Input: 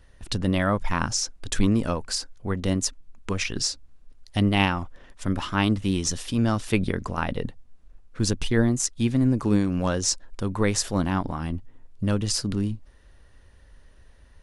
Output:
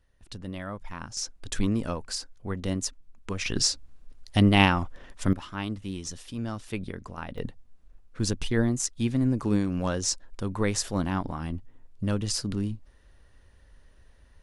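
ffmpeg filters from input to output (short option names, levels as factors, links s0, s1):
-af "asetnsamples=n=441:p=0,asendcmd='1.17 volume volume -5dB;3.46 volume volume 2dB;5.33 volume volume -10.5dB;7.38 volume volume -3.5dB',volume=0.211"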